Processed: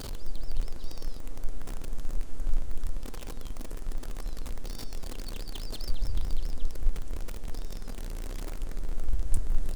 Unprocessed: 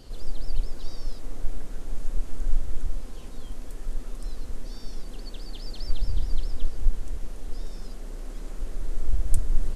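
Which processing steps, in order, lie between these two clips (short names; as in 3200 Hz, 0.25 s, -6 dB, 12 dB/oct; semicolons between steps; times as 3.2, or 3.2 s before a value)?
zero-crossing step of -29 dBFS; gain -4.5 dB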